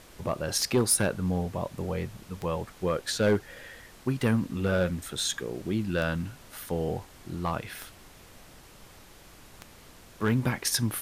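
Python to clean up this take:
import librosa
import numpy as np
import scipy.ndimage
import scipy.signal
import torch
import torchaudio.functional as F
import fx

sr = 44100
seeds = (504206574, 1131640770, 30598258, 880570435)

y = fx.fix_declip(x, sr, threshold_db=-17.0)
y = fx.fix_declick_ar(y, sr, threshold=10.0)
y = fx.noise_reduce(y, sr, print_start_s=8.88, print_end_s=9.38, reduce_db=22.0)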